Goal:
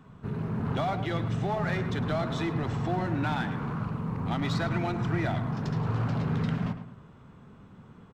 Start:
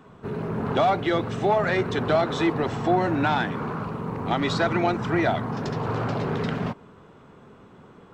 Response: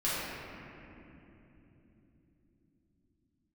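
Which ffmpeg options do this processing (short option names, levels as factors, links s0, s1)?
-filter_complex "[0:a]asplit=2[s0][s1];[s1]asoftclip=type=hard:threshold=0.0376,volume=0.596[s2];[s0][s2]amix=inputs=2:normalize=0,firequalizer=gain_entry='entry(140,0);entry(380,-12);entry(1100,-8)':delay=0.05:min_phase=1,asplit=2[s3][s4];[s4]adelay=107,lowpass=f=2800:p=1,volume=0.316,asplit=2[s5][s6];[s6]adelay=107,lowpass=f=2800:p=1,volume=0.39,asplit=2[s7][s8];[s8]adelay=107,lowpass=f=2800:p=1,volume=0.39,asplit=2[s9][s10];[s10]adelay=107,lowpass=f=2800:p=1,volume=0.39[s11];[s3][s5][s7][s9][s11]amix=inputs=5:normalize=0,volume=0.841"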